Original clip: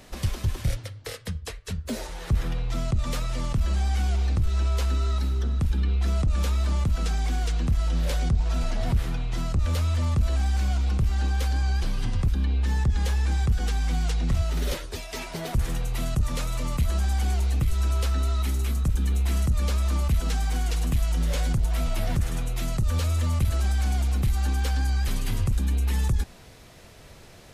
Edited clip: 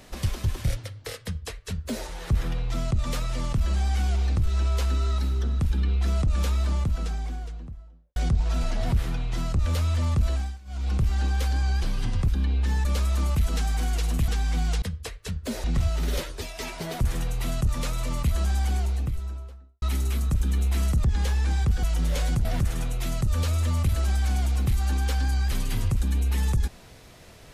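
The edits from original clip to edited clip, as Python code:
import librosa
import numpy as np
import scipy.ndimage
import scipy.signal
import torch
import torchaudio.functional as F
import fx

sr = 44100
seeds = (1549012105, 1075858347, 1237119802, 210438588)

y = fx.studio_fade_out(x, sr, start_s=6.45, length_s=1.71)
y = fx.studio_fade_out(y, sr, start_s=17.07, length_s=1.29)
y = fx.edit(y, sr, fx.duplicate(start_s=1.24, length_s=0.82, to_s=14.18),
    fx.fade_down_up(start_s=10.29, length_s=0.66, db=-23.0, fade_s=0.3),
    fx.swap(start_s=12.85, length_s=0.79, other_s=19.58, other_length_s=1.43),
    fx.cut(start_s=21.63, length_s=0.38), tone=tone)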